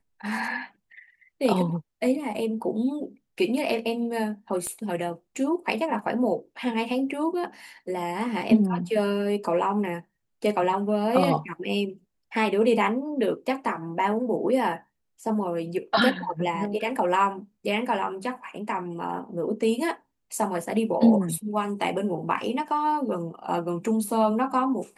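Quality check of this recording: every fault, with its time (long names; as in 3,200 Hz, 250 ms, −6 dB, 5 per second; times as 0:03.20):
0:04.67: click −21 dBFS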